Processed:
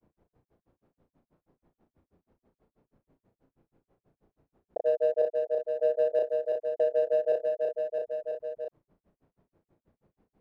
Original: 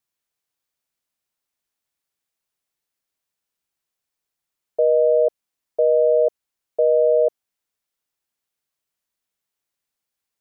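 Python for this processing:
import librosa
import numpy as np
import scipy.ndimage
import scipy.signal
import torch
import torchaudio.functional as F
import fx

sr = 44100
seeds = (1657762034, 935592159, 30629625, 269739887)

p1 = fx.env_lowpass(x, sr, base_hz=410.0, full_db=-16.0)
p2 = fx.granulator(p1, sr, seeds[0], grain_ms=100.0, per_s=6.2, spray_ms=100.0, spread_st=0)
p3 = np.clip(p2, -10.0 ** (-23.5 / 20.0), 10.0 ** (-23.5 / 20.0))
p4 = p2 + (p3 * 10.0 ** (-9.0 / 20.0))
p5 = fx.doubler(p4, sr, ms=34.0, db=-6.5)
p6 = fx.echo_feedback(p5, sr, ms=331, feedback_pct=40, wet_db=-11.5)
p7 = fx.env_flatten(p6, sr, amount_pct=70)
y = p7 * 10.0 ** (-8.5 / 20.0)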